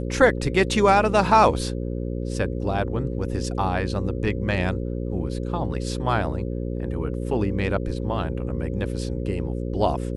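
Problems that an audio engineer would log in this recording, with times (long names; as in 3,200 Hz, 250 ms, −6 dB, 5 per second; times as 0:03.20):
mains buzz 60 Hz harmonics 9 −28 dBFS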